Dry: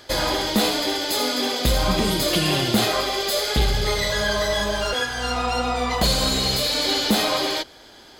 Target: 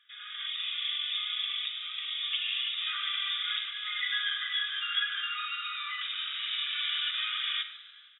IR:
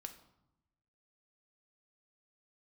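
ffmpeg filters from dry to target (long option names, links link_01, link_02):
-filter_complex "[1:a]atrim=start_sample=2205[link_01];[0:a][link_01]afir=irnorm=-1:irlink=0,acompressor=threshold=-25dB:ratio=20,aderivative,dynaudnorm=framelen=170:gausssize=5:maxgain=14.5dB,asettb=1/sr,asplit=3[link_02][link_03][link_04];[link_02]atrim=end=0.474[link_05];[link_03]atrim=start=0.47:end=2.87,asetpts=PTS-STARTPTS,afade=type=in:duration=0.004:curve=qsin,afade=type=out:start_time=2.396:duration=0.004:curve=qsin,equalizer=frequency=1500:width_type=o:width=0.51:gain=-11.5[link_06];[link_04]atrim=start=2.866[link_07];[link_05][link_06]acrossfade=duration=0.004:curve1=hsin:curve2=qsin[link_08];[link_08][link_07]acrossfade=duration=0.004:curve1=qsin:curve2=hsin,afftfilt=real='re*between(b*sr/4096,1100,3800)':imag='im*between(b*sr/4096,1100,3800)':win_size=4096:overlap=0.75,asplit=4[link_09][link_10][link_11][link_12];[link_10]adelay=147,afreqshift=110,volume=-18.5dB[link_13];[link_11]adelay=294,afreqshift=220,volume=-28.7dB[link_14];[link_12]adelay=441,afreqshift=330,volume=-38.8dB[link_15];[link_09][link_13][link_14][link_15]amix=inputs=4:normalize=0,volume=-2dB"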